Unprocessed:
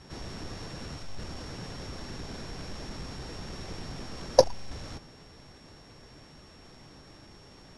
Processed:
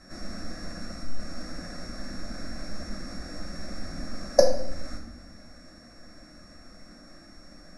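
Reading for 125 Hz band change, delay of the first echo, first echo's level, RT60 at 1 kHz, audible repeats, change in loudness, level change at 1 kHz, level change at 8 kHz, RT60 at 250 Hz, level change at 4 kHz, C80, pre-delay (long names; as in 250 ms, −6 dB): −1.5 dB, no echo audible, no echo audible, 0.70 s, no echo audible, +1.5 dB, −1.5 dB, +2.0 dB, 1.7 s, +0.5 dB, 11.0 dB, 3 ms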